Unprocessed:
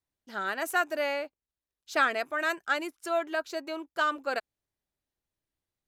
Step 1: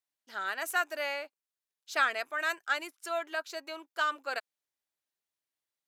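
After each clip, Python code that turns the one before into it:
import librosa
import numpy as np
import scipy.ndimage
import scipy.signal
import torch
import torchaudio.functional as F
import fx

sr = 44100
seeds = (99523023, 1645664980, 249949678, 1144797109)

y = fx.highpass(x, sr, hz=1100.0, slope=6)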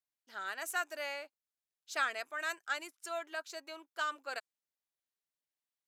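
y = fx.dynamic_eq(x, sr, hz=7400.0, q=1.2, threshold_db=-54.0, ratio=4.0, max_db=6)
y = F.gain(torch.from_numpy(y), -6.0).numpy()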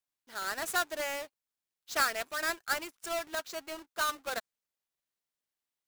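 y = fx.halfwave_hold(x, sr)
y = F.gain(torch.from_numpy(y), 1.0).numpy()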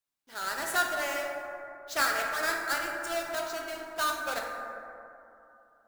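y = fx.rev_plate(x, sr, seeds[0], rt60_s=2.9, hf_ratio=0.3, predelay_ms=0, drr_db=-0.5)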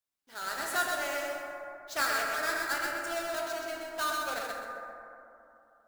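y = fx.echo_feedback(x, sr, ms=128, feedback_pct=29, wet_db=-4)
y = F.gain(torch.from_numpy(y), -3.0).numpy()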